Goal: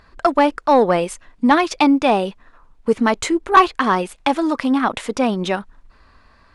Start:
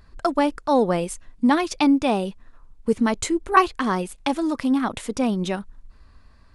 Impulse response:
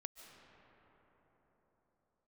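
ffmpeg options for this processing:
-filter_complex "[0:a]asplit=2[link_01][link_02];[link_02]highpass=frequency=720:poles=1,volume=13dB,asoftclip=type=tanh:threshold=-3dB[link_03];[link_01][link_03]amix=inputs=2:normalize=0,lowpass=frequency=2400:poles=1,volume=-6dB,volume=2.5dB"

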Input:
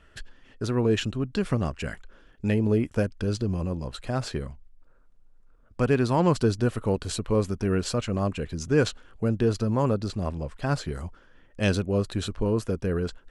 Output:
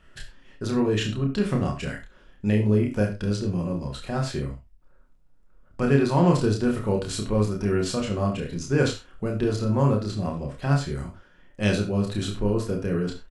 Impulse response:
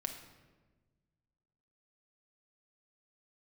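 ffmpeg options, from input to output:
-filter_complex "[0:a]aecho=1:1:29|67:0.668|0.168[link_01];[1:a]atrim=start_sample=2205,atrim=end_sample=4410[link_02];[link_01][link_02]afir=irnorm=-1:irlink=0"

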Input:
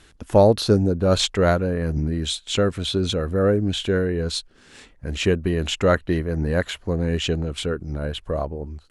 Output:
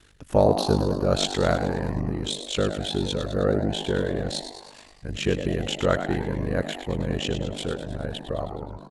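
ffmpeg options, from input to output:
ffmpeg -i in.wav -filter_complex "[0:a]asplit=8[link_01][link_02][link_03][link_04][link_05][link_06][link_07][link_08];[link_02]adelay=105,afreqshift=94,volume=-9.5dB[link_09];[link_03]adelay=210,afreqshift=188,volume=-14.1dB[link_10];[link_04]adelay=315,afreqshift=282,volume=-18.7dB[link_11];[link_05]adelay=420,afreqshift=376,volume=-23.2dB[link_12];[link_06]adelay=525,afreqshift=470,volume=-27.8dB[link_13];[link_07]adelay=630,afreqshift=564,volume=-32.4dB[link_14];[link_08]adelay=735,afreqshift=658,volume=-37dB[link_15];[link_01][link_09][link_10][link_11][link_12][link_13][link_14][link_15]amix=inputs=8:normalize=0,aeval=exprs='val(0)*sin(2*PI*25*n/s)':channel_layout=same,volume=-1.5dB" out.wav

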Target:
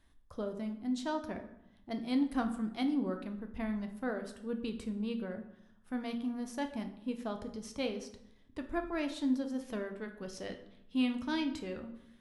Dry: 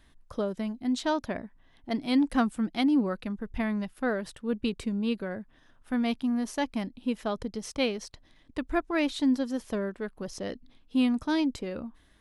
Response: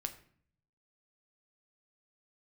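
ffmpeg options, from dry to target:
-filter_complex "[0:a]asetnsamples=nb_out_samples=441:pad=0,asendcmd='9.61 equalizer g 4.5',equalizer=frequency=2600:width_type=o:width=1.7:gain=-2.5[link_01];[1:a]atrim=start_sample=2205,asetrate=29106,aresample=44100[link_02];[link_01][link_02]afir=irnorm=-1:irlink=0,volume=-8.5dB"

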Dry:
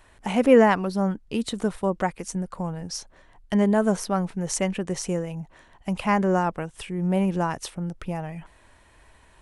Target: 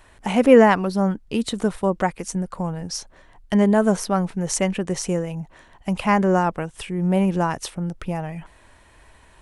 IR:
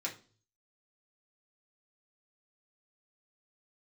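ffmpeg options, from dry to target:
-af "volume=3.5dB"

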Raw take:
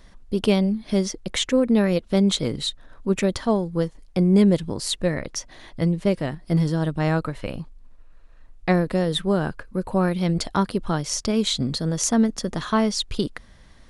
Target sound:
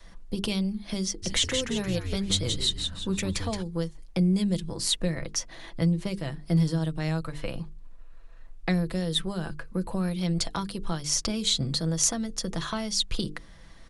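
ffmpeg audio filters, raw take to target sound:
ffmpeg -i in.wav -filter_complex "[0:a]acrossover=split=160|3000[link_01][link_02][link_03];[link_02]acompressor=threshold=-30dB:ratio=6[link_04];[link_01][link_04][link_03]amix=inputs=3:normalize=0,aecho=1:1:6:0.39,asplit=3[link_05][link_06][link_07];[link_05]afade=type=out:start_time=1.22:duration=0.02[link_08];[link_06]asplit=6[link_09][link_10][link_11][link_12][link_13][link_14];[link_10]adelay=173,afreqshift=-100,volume=-5dB[link_15];[link_11]adelay=346,afreqshift=-200,volume=-12.3dB[link_16];[link_12]adelay=519,afreqshift=-300,volume=-19.7dB[link_17];[link_13]adelay=692,afreqshift=-400,volume=-27dB[link_18];[link_14]adelay=865,afreqshift=-500,volume=-34.3dB[link_19];[link_09][link_15][link_16][link_17][link_18][link_19]amix=inputs=6:normalize=0,afade=type=in:start_time=1.22:duration=0.02,afade=type=out:start_time=3.62:duration=0.02[link_20];[link_07]afade=type=in:start_time=3.62:duration=0.02[link_21];[link_08][link_20][link_21]amix=inputs=3:normalize=0,adynamicequalizer=threshold=0.0126:dfrequency=190:dqfactor=0.81:tfrequency=190:tqfactor=0.81:attack=5:release=100:ratio=0.375:range=2.5:mode=cutabove:tftype=bell,bandreject=frequency=50:width_type=h:width=6,bandreject=frequency=100:width_type=h:width=6,bandreject=frequency=150:width_type=h:width=6,bandreject=frequency=200:width_type=h:width=6,bandreject=frequency=250:width_type=h:width=6,bandreject=frequency=300:width_type=h:width=6,bandreject=frequency=350:width_type=h:width=6,bandreject=frequency=400:width_type=h:width=6,bandreject=frequency=450:width_type=h:width=6" out.wav

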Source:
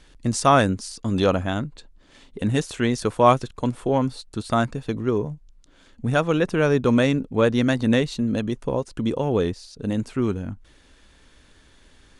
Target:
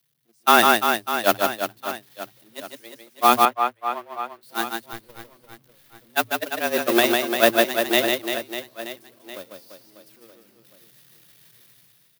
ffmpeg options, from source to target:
ffmpeg -i in.wav -filter_complex "[0:a]aeval=exprs='val(0)+0.5*0.0841*sgn(val(0))':channel_layout=same,agate=range=-53dB:threshold=-12dB:ratio=16:detection=peak,afreqshift=110,dynaudnorm=framelen=100:gausssize=9:maxgain=15dB,aecho=1:1:150|345|598.5|928|1356:0.631|0.398|0.251|0.158|0.1,crystalizer=i=7:c=0,asettb=1/sr,asplit=3[link_01][link_02][link_03];[link_01]atrim=end=3.454[link_04];[link_02]atrim=start=3.45:end=4.43,asetpts=PTS-STARTPTS,afade=type=in:duration=0.004:curve=qsin,afade=type=out:start_time=0.976:duration=0.004:curve=qsin,acrossover=split=430 2700:gain=0.251 1 0.158[link_05][link_06][link_07];[link_05][link_06][link_07]amix=inputs=3:normalize=0[link_08];[link_03]atrim=start=4.426[link_09];[link_04][link_08]acrossfade=duration=0.004:curve1=hsin:curve2=qsin[link_10];[link_10][link_09]acrossfade=duration=0.004:curve1=qsin:curve2=hsin,asettb=1/sr,asplit=3[link_11][link_12][link_13];[link_11]atrim=end=4.934[link_14];[link_12]atrim=start=4.93:end=6.1,asetpts=PTS-STARTPTS,afade=type=in:duration=0.004:curve=qsin,afade=type=out:start_time=1.166:duration=0.004:curve=qsin,aeval=exprs='clip(val(0),-1,0.00251)':channel_layout=same[link_15];[link_13]atrim=start=6.096[link_16];[link_14][link_15]acrossfade=duration=0.004:curve1=hsin:curve2=qsin[link_17];[link_17][link_16]acrossfade=duration=0.004:curve1=qsin:curve2=hsin,equalizer=frequency=7400:width=1.4:gain=-9.5,alimiter=level_in=0dB:limit=-1dB:release=50:level=0:latency=1,volume=-1dB" out.wav

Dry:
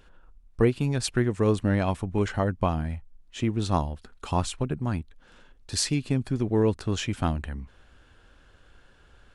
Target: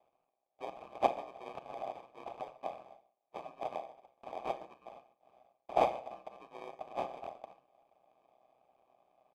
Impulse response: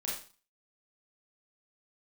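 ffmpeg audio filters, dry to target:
-filter_complex "[0:a]asuperstop=centerf=2300:order=20:qfactor=7.6,aderivative,acrusher=samples=32:mix=1:aa=0.000001,asplit=3[link_01][link_02][link_03];[link_01]bandpass=frequency=730:width_type=q:width=8,volume=0dB[link_04];[link_02]bandpass=frequency=1090:width_type=q:width=8,volume=-6dB[link_05];[link_03]bandpass=frequency=2440:width_type=q:width=8,volume=-9dB[link_06];[link_04][link_05][link_06]amix=inputs=3:normalize=0,asplit=2[link_07][link_08];[link_08]adelay=139.9,volume=-20dB,highshelf=frequency=4000:gain=-3.15[link_09];[link_07][link_09]amix=inputs=2:normalize=0,asplit=2[link_10][link_11];[1:a]atrim=start_sample=2205[link_12];[link_11][link_12]afir=irnorm=-1:irlink=0,volume=-10dB[link_13];[link_10][link_13]amix=inputs=2:normalize=0,aeval=exprs='val(0)*sin(2*PI*63*n/s)':channel_layout=same,volume=15dB"

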